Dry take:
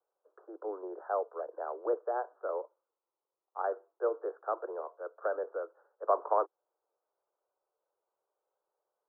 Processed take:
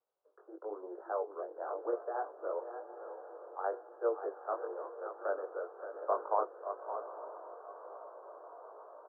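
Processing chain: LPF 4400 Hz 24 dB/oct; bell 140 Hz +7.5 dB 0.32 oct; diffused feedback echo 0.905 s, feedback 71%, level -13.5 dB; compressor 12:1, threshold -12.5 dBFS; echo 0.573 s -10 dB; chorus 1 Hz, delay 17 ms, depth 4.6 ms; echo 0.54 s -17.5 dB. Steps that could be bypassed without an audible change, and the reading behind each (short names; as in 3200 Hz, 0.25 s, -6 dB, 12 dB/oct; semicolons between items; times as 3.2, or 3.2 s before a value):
LPF 4400 Hz: input band ends at 1700 Hz; bell 140 Hz: input band starts at 290 Hz; compressor, threshold -12.5 dBFS: input peak -14.0 dBFS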